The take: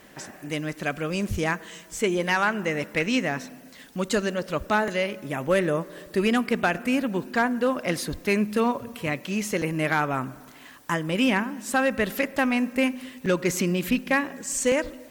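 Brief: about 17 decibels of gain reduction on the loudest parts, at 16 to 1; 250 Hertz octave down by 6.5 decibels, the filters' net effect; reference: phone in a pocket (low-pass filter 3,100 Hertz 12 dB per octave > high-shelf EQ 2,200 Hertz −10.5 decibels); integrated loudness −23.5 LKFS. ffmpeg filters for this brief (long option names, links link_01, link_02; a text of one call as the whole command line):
ffmpeg -i in.wav -af "equalizer=frequency=250:width_type=o:gain=-8,acompressor=threshold=-36dB:ratio=16,lowpass=3100,highshelf=frequency=2200:gain=-10.5,volume=20dB" out.wav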